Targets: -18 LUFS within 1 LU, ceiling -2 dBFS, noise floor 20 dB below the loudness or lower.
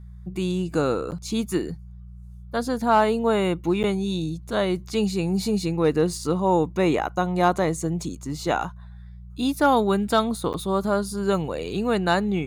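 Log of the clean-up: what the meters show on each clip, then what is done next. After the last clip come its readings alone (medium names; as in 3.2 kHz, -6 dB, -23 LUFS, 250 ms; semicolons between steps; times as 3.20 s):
dropouts 3; longest dropout 9.3 ms; hum 60 Hz; highest harmonic 180 Hz; hum level -37 dBFS; loudness -24.0 LUFS; peak level -8.5 dBFS; loudness target -18.0 LUFS
-> interpolate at 1.11/3.83/10.53 s, 9.3 ms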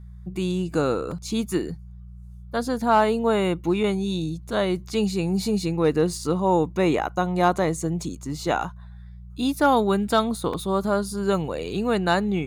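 dropouts 0; hum 60 Hz; highest harmonic 180 Hz; hum level -37 dBFS
-> de-hum 60 Hz, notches 3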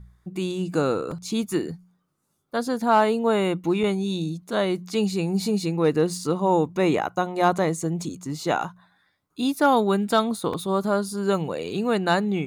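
hum not found; loudness -24.0 LUFS; peak level -8.5 dBFS; loudness target -18.0 LUFS
-> trim +6 dB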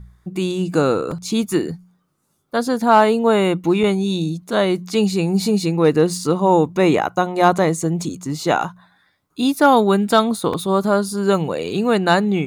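loudness -18.0 LUFS; peak level -2.5 dBFS; noise floor -66 dBFS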